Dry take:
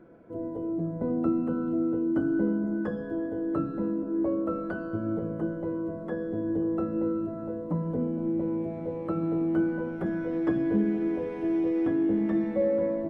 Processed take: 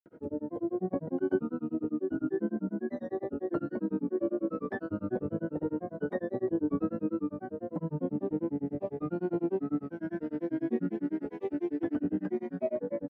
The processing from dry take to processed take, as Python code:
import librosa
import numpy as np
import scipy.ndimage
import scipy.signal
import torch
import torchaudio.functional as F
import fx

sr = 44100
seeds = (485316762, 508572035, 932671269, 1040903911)

y = fx.rider(x, sr, range_db=5, speed_s=2.0)
y = fx.notch_comb(y, sr, f0_hz=1200.0)
y = fx.granulator(y, sr, seeds[0], grain_ms=100.0, per_s=10.0, spray_ms=100.0, spread_st=3)